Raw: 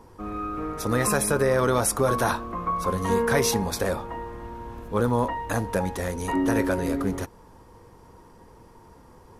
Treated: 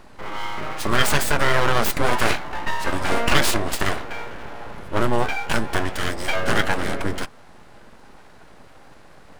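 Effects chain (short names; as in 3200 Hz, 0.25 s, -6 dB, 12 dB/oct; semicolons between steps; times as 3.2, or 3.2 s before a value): graphic EQ 125/250/2000/4000 Hz +8/-3/+11/+5 dB; full-wave rectifier; formant shift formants -3 st; gain +3.5 dB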